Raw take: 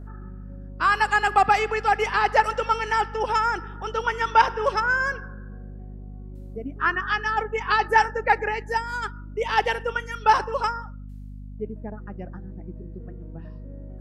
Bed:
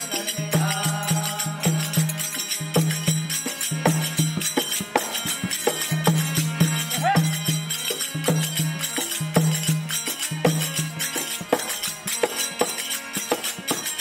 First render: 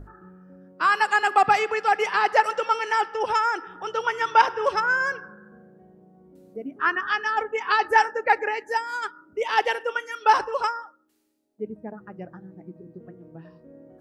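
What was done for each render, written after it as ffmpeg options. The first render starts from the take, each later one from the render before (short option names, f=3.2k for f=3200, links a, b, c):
-af "bandreject=f=50:t=h:w=6,bandreject=f=100:t=h:w=6,bandreject=f=150:t=h:w=6,bandreject=f=200:t=h:w=6,bandreject=f=250:t=h:w=6"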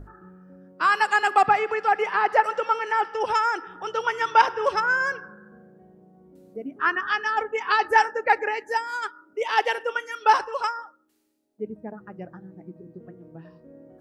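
-filter_complex "[0:a]asettb=1/sr,asplit=3[a][b][c];[a]atrim=end=1.444[d];[b]atrim=start=1.44:end=3.05,asetpts=PTS-STARTPTS,afade=t=in:d=0.004:c=qsin,afade=t=out:st=1.606:d=0.004:c=qsin,acrossover=split=2500[e][f];[f]acompressor=threshold=-46dB:ratio=4:attack=1:release=60[g];[e][g]amix=inputs=2:normalize=0[h];[c]atrim=start=3.046[i];[d][h]acrossfade=d=0.004:c1=hsin:c2=qsin[j];[j][i]acrossfade=d=0.004:c1=qsin:c2=hsin,asettb=1/sr,asplit=3[k][l][m];[k]atrim=end=8.884[n];[l]atrim=start=8.88:end=9.78,asetpts=PTS-STARTPTS,afade=t=in:d=0.004:c=qsin,afade=t=out:st=0.896:d=0.004:c=qsin,highpass=290[o];[m]atrim=start=9.776[p];[n][o]acrossfade=d=0.004:c1=hsin:c2=qsin[q];[q][p]acrossfade=d=0.004:c1=qsin:c2=hsin,asettb=1/sr,asplit=3[r][s][t];[r]atrim=end=10.364[u];[s]atrim=start=10.36:end=10.78,asetpts=PTS-STARTPTS,afade=t=in:d=0.004:c=qsin,afade=t=out:st=0.416:d=0.004:c=qsin,lowshelf=f=400:g=-9.5[v];[t]atrim=start=10.776[w];[u][v]acrossfade=d=0.004:c1=hsin:c2=qsin[x];[x][w]acrossfade=d=0.004:c1=qsin:c2=hsin"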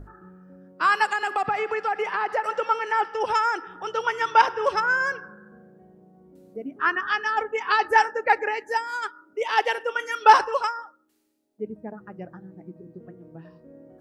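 -filter_complex "[0:a]asettb=1/sr,asplit=3[a][b][c];[a]atrim=end=1.104[d];[b]atrim=start=1.1:end=2.44,asetpts=PTS-STARTPTS,afade=t=in:d=0.004:c=qsin,afade=t=out:st=1.336:d=0.004:c=qsin,acompressor=threshold=-21dB:ratio=4:attack=3.2:release=140:knee=1:detection=peak[e];[c]atrim=start=2.436[f];[d][e]acrossfade=d=0.004:c1=hsin:c2=qsin[g];[g][f]acrossfade=d=0.004:c1=qsin:c2=hsin,asettb=1/sr,asplit=3[h][i][j];[h]atrim=end=9.994[k];[i]atrim=start=9.99:end=10.59,asetpts=PTS-STARTPTS,afade=t=in:d=0.004:c=qsin,afade=t=out:st=0.596:d=0.004:c=qsin,acontrast=22[l];[j]atrim=start=10.586[m];[k][l]acrossfade=d=0.004:c1=hsin:c2=qsin[n];[n][m]acrossfade=d=0.004:c1=qsin:c2=hsin"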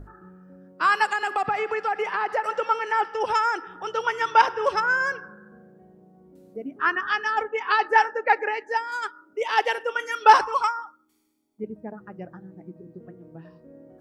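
-filter_complex "[0:a]asettb=1/sr,asplit=3[a][b][c];[a]atrim=end=7.484[d];[b]atrim=start=7.48:end=8.92,asetpts=PTS-STARTPTS,afade=t=in:d=0.004:c=qsin,afade=t=out:st=1.436:d=0.004:c=qsin,highpass=250,lowpass=4.8k[e];[c]atrim=start=8.916[f];[d][e]acrossfade=d=0.004:c1=hsin:c2=qsin[g];[g][f]acrossfade=d=0.004:c1=qsin:c2=hsin,asettb=1/sr,asplit=3[h][i][j];[h]atrim=end=10.414[k];[i]atrim=start=10.41:end=11.64,asetpts=PTS-STARTPTS,afade=t=in:d=0.004:c=qsin,afade=t=out:st=1.226:d=0.004:c=qsin,aecho=1:1:0.9:0.65,atrim=end_sample=54243[l];[j]atrim=start=11.636[m];[k][l]acrossfade=d=0.004:c1=hsin:c2=qsin[n];[n][m]acrossfade=d=0.004:c1=qsin:c2=hsin"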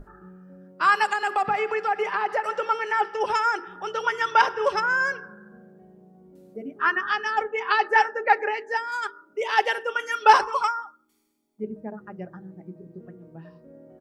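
-af "bandreject=f=50:t=h:w=6,bandreject=f=100:t=h:w=6,bandreject=f=150:t=h:w=6,bandreject=f=200:t=h:w=6,bandreject=f=250:t=h:w=6,bandreject=f=300:t=h:w=6,bandreject=f=350:t=h:w=6,bandreject=f=400:t=h:w=6,bandreject=f=450:t=h:w=6,aecho=1:1:5:0.32"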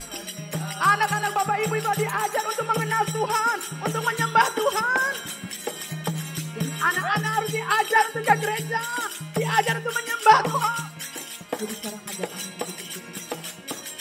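-filter_complex "[1:a]volume=-8.5dB[a];[0:a][a]amix=inputs=2:normalize=0"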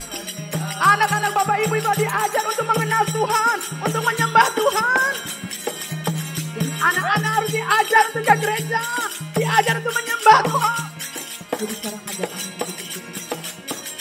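-af "volume=4.5dB,alimiter=limit=-1dB:level=0:latency=1"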